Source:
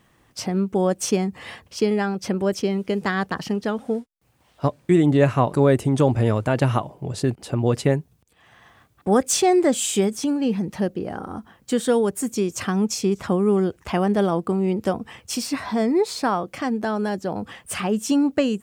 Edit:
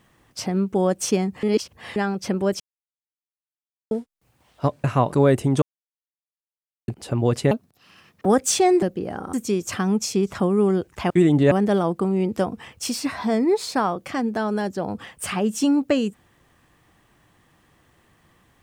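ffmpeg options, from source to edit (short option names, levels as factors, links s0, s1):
-filter_complex "[0:a]asplit=14[s0][s1][s2][s3][s4][s5][s6][s7][s8][s9][s10][s11][s12][s13];[s0]atrim=end=1.432[s14];[s1]atrim=start=1.428:end=1.962,asetpts=PTS-STARTPTS,areverse[s15];[s2]atrim=start=1.958:end=2.6,asetpts=PTS-STARTPTS,afade=t=out:st=0.638:d=0.004:c=hsin[s16];[s3]atrim=start=2.6:end=3.91,asetpts=PTS-STARTPTS,volume=0[s17];[s4]atrim=start=3.91:end=4.842,asetpts=PTS-STARTPTS,afade=t=in:d=0.004:c=hsin[s18];[s5]atrim=start=5.248:end=6.03,asetpts=PTS-STARTPTS,afade=t=out:st=0.778:d=0.004:c=hsin[s19];[s6]atrim=start=6.03:end=7.29,asetpts=PTS-STARTPTS,volume=0[s20];[s7]atrim=start=7.29:end=7.924,asetpts=PTS-STARTPTS,afade=t=in:d=0.004:c=hsin[s21];[s8]atrim=start=7.92:end=9.08,asetpts=PTS-STARTPTS,asetrate=68796,aresample=44100,atrim=end_sample=32792,asetpts=PTS-STARTPTS[s22];[s9]atrim=start=9.076:end=9.652[s23];[s10]atrim=start=10.818:end=11.332[s24];[s11]atrim=start=12.218:end=13.992[s25];[s12]atrim=start=4.838:end=5.252[s26];[s13]atrim=start=13.988[s27];[s14][s15]acrossfade=d=0.004:c1=hsin:c2=hsin[s28];[s16][s17][s18]concat=n=3:v=0:a=1[s29];[s28][s29]acrossfade=d=0.004:c1=hsin:c2=hsin[s30];[s19][s20][s21]concat=n=3:v=0:a=1[s31];[s30][s31]acrossfade=d=0.004:c1=hsin:c2=hsin[s32];[s32][s22]acrossfade=d=0.004:c1=hsin:c2=hsin[s33];[s33][s23]acrossfade=d=0.004:c1=hsin:c2=hsin[s34];[s34][s24]acrossfade=d=0.004:c1=hsin:c2=hsin[s35];[s35][s25]acrossfade=d=0.004:c1=hsin:c2=hsin[s36];[s36][s26]acrossfade=d=0.004:c1=hsin:c2=hsin[s37];[s37][s27]acrossfade=d=0.004:c1=hsin:c2=hsin"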